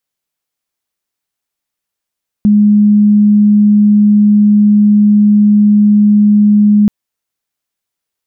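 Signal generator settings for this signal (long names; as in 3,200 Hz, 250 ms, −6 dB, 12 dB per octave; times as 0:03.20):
tone sine 208 Hz −4 dBFS 4.43 s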